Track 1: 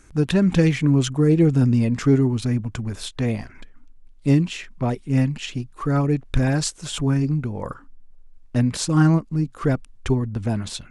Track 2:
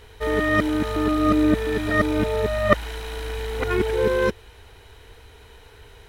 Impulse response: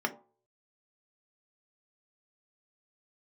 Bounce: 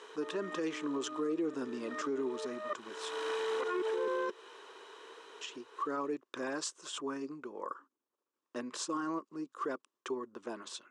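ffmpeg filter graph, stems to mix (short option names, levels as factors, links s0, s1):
-filter_complex "[0:a]volume=0.316,asplit=3[s0][s1][s2];[s0]atrim=end=3.18,asetpts=PTS-STARTPTS,afade=t=out:st=3.176:d=0.004:c=hsin[s3];[s1]atrim=start=3.18:end=5.41,asetpts=PTS-STARTPTS,volume=0[s4];[s2]atrim=start=5.41,asetpts=PTS-STARTPTS,afade=t=in:d=0.004:c=hsin[s5];[s3][s4][s5]concat=n=3:v=0:a=1,asplit=2[s6][s7];[1:a]acompressor=threshold=0.0562:ratio=3,volume=0.841[s8];[s7]apad=whole_len=268330[s9];[s8][s9]sidechaincompress=threshold=0.01:ratio=10:attack=8.1:release=447[s10];[s6][s10]amix=inputs=2:normalize=0,highpass=f=340:w=0.5412,highpass=f=340:w=1.3066,equalizer=f=360:t=q:w=4:g=5,equalizer=f=740:t=q:w=4:g=-7,equalizer=f=1100:t=q:w=4:g=10,equalizer=f=2200:t=q:w=4:g=-7,equalizer=f=4300:t=q:w=4:g=-4,lowpass=f=8100:w=0.5412,lowpass=f=8100:w=1.3066,alimiter=level_in=1.41:limit=0.0631:level=0:latency=1:release=47,volume=0.708"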